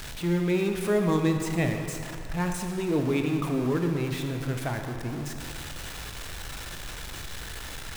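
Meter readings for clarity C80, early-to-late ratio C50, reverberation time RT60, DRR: 6.0 dB, 5.0 dB, 2.4 s, 4.0 dB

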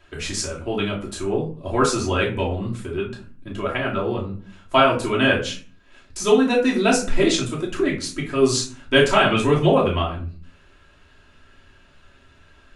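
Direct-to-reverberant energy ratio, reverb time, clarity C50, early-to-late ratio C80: -5.0 dB, 0.40 s, 8.5 dB, 14.0 dB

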